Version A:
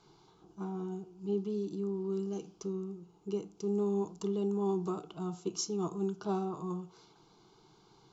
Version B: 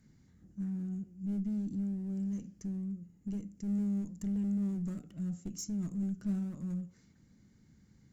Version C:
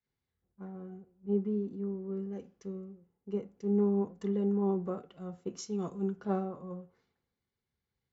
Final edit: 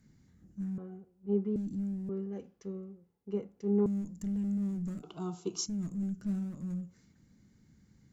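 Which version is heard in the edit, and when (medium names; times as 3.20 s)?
B
0.78–1.56 s: from C
2.09–3.86 s: from C
5.03–5.66 s: from A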